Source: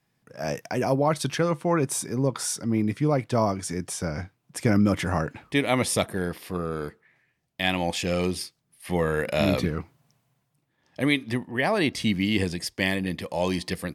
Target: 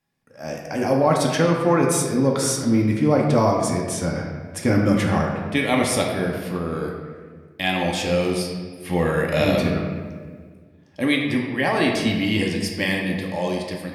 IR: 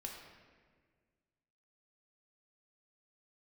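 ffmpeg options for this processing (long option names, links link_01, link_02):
-filter_complex "[0:a]dynaudnorm=framelen=120:gausssize=13:maxgain=11.5dB[link_01];[1:a]atrim=start_sample=2205[link_02];[link_01][link_02]afir=irnorm=-1:irlink=0"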